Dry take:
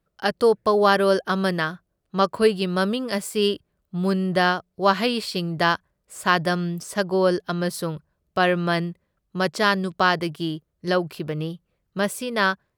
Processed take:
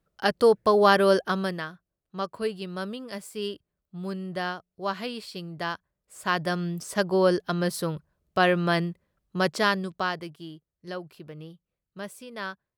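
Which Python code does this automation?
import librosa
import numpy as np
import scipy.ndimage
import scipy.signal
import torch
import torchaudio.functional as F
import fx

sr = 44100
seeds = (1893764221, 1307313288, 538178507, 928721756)

y = fx.gain(x, sr, db=fx.line((1.21, -1.0), (1.69, -11.0), (5.72, -11.0), (6.95, -1.5), (9.53, -1.5), (10.41, -14.0)))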